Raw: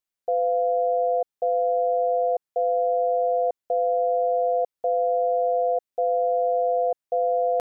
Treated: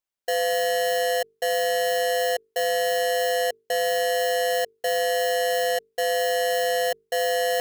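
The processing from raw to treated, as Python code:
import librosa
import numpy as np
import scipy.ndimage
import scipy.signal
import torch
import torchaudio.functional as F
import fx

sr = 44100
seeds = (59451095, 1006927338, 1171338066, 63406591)

y = fx.halfwave_hold(x, sr)
y = fx.hum_notches(y, sr, base_hz=50, count=9)
y = y * librosa.db_to_amplitude(-4.0)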